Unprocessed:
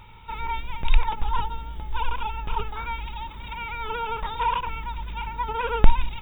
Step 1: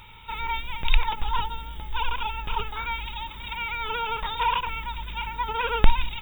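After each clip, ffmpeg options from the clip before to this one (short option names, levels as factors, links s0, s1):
-af "highshelf=f=2000:g=12,volume=0.75"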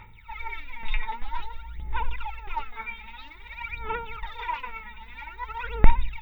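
-filter_complex "[0:a]aphaser=in_gain=1:out_gain=1:delay=4.7:decay=0.79:speed=0.51:type=sinusoidal,equalizer=f=2000:t=o:w=0.33:g=11,equalizer=f=3150:t=o:w=0.33:g=-10,equalizer=f=8000:t=o:w=0.33:g=-6,acrossover=split=6500[s0][s1];[s1]acompressor=threshold=0.002:ratio=4:attack=1:release=60[s2];[s0][s2]amix=inputs=2:normalize=0,volume=0.266"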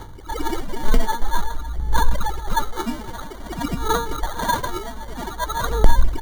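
-filter_complex "[0:a]acrossover=split=350|900[s0][s1][s2];[s2]acrusher=samples=17:mix=1:aa=0.000001[s3];[s0][s1][s3]amix=inputs=3:normalize=0,alimiter=level_in=3.98:limit=0.891:release=50:level=0:latency=1,volume=0.891"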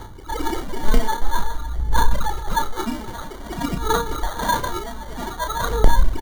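-filter_complex "[0:a]asplit=2[s0][s1];[s1]adelay=32,volume=0.447[s2];[s0][s2]amix=inputs=2:normalize=0"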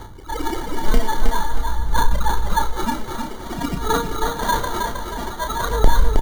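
-af "aecho=1:1:316|632|948|1264|1580:0.562|0.208|0.077|0.0285|0.0105"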